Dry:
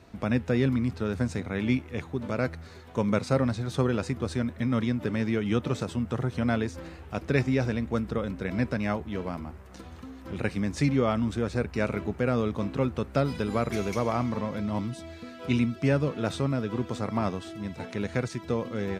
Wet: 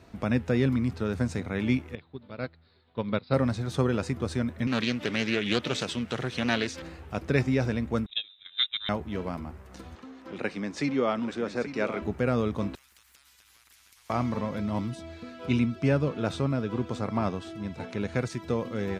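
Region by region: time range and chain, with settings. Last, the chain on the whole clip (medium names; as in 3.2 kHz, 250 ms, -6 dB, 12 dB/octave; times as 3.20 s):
1.95–3.34 s: steep low-pass 5 kHz 96 dB/octave + peaking EQ 3.8 kHz +9.5 dB 0.53 oct + upward expansion 2.5:1, over -33 dBFS
4.67–6.82 s: frequency weighting D + loudspeaker Doppler distortion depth 0.24 ms
8.06–8.89 s: gate -28 dBFS, range -21 dB + frequency inversion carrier 3.8 kHz
9.95–12.02 s: three-band isolator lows -21 dB, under 200 Hz, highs -14 dB, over 7.1 kHz + delay 837 ms -11.5 dB
12.75–14.10 s: inverse Chebyshev band-stop 150–620 Hz, stop band 60 dB + compression 10:1, threshold -49 dBFS + spectrum-flattening compressor 4:1
14.95–18.17 s: treble shelf 8.4 kHz -8.5 dB + band-stop 1.9 kHz, Q 15
whole clip: none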